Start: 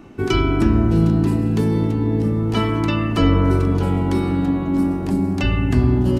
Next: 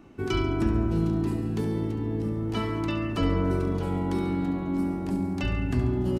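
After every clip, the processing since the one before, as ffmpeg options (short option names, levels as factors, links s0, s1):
-af "aecho=1:1:70|140|210|280|350:0.316|0.152|0.0729|0.035|0.0168,volume=0.355"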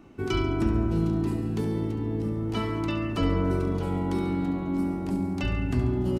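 -af "bandreject=f=1700:w=24"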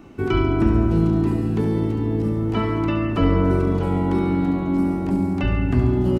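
-filter_complex "[0:a]acrossover=split=2800[s0][s1];[s1]acompressor=threshold=0.00126:ratio=4:attack=1:release=60[s2];[s0][s2]amix=inputs=2:normalize=0,volume=2.24"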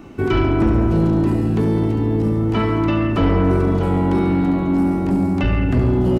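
-af "asoftclip=type=tanh:threshold=0.178,volume=1.78"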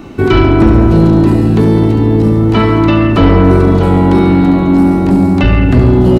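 -af "equalizer=f=4000:w=4.1:g=5.5,volume=2.82"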